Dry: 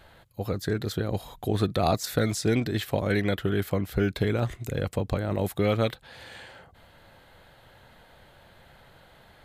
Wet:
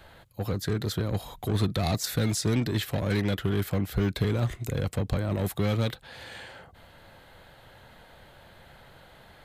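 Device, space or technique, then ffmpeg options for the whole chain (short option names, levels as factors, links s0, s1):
one-band saturation: -filter_complex "[0:a]acrossover=split=230|3200[s0][s1][s2];[s1]asoftclip=type=tanh:threshold=0.0266[s3];[s0][s3][s2]amix=inputs=3:normalize=0,volume=1.26"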